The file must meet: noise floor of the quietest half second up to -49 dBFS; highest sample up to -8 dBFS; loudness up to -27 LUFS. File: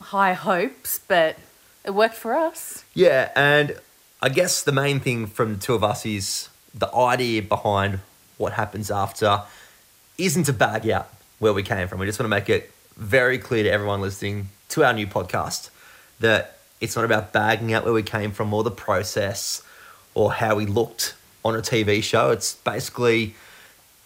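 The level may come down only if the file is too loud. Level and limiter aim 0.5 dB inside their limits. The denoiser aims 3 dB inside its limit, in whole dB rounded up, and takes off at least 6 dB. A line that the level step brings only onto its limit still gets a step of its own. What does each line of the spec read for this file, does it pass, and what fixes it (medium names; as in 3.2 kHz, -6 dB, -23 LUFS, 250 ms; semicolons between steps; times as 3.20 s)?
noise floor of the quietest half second -54 dBFS: pass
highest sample -6.0 dBFS: fail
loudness -22.0 LUFS: fail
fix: trim -5.5 dB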